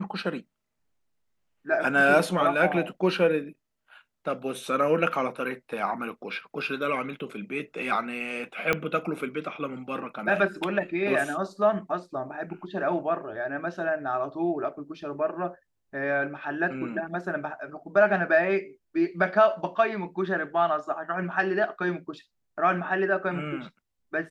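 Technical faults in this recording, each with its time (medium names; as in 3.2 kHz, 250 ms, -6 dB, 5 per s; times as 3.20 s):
8.73 s: pop -10 dBFS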